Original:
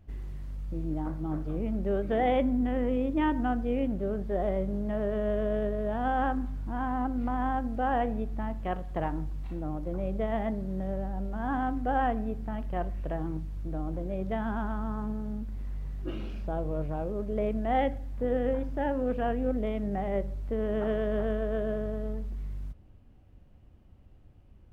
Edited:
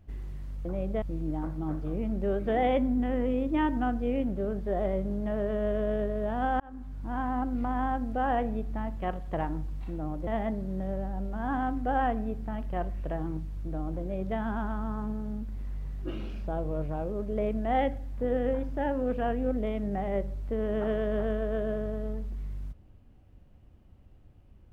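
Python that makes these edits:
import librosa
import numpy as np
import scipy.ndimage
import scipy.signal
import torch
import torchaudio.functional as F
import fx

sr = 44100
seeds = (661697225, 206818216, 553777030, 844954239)

y = fx.edit(x, sr, fx.fade_in_span(start_s=6.23, length_s=0.55),
    fx.move(start_s=9.9, length_s=0.37, to_s=0.65), tone=tone)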